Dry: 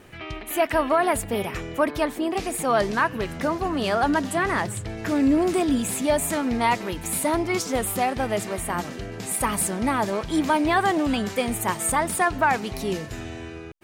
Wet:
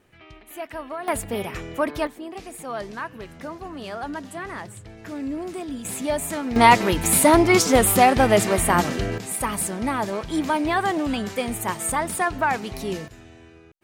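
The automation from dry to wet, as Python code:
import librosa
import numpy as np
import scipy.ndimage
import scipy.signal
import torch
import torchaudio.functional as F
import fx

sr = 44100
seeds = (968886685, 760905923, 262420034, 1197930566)

y = fx.gain(x, sr, db=fx.steps((0.0, -12.0), (1.08, -1.5), (2.07, -10.0), (5.85, -3.0), (6.56, 8.5), (9.18, -1.5), (13.08, -11.5)))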